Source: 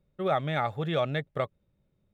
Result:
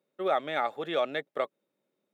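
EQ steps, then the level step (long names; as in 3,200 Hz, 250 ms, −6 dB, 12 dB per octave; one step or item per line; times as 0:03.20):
high-pass filter 270 Hz 24 dB per octave
0.0 dB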